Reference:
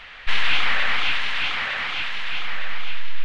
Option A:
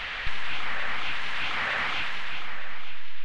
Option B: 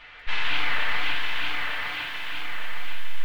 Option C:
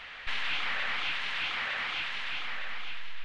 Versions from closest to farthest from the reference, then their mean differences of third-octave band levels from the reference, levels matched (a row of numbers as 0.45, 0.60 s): C, A, B; 1.5, 3.5, 4.5 dB